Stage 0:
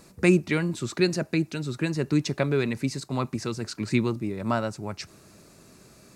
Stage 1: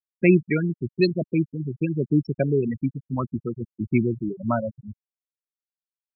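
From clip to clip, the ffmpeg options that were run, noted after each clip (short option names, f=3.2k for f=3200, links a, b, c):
-af "afftfilt=real='re*gte(hypot(re,im),0.158)':imag='im*gte(hypot(re,im),0.158)':win_size=1024:overlap=0.75,volume=3dB"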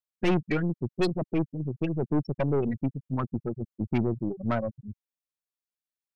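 -af "aeval=exprs='(tanh(10*val(0)+0.5)-tanh(0.5))/10':c=same"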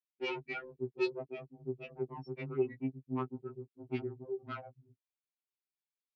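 -af "highpass=240,equalizer=f=240:t=q:w=4:g=-4,equalizer=f=360:t=q:w=4:g=7,equalizer=f=560:t=q:w=4:g=-10,equalizer=f=1.1k:t=q:w=4:g=-4,equalizer=f=1.7k:t=q:w=4:g=-7,equalizer=f=2.4k:t=q:w=4:g=5,lowpass=f=5.1k:w=0.5412,lowpass=f=5.1k:w=1.3066,afftfilt=real='re*2.45*eq(mod(b,6),0)':imag='im*2.45*eq(mod(b,6),0)':win_size=2048:overlap=0.75,volume=-4.5dB"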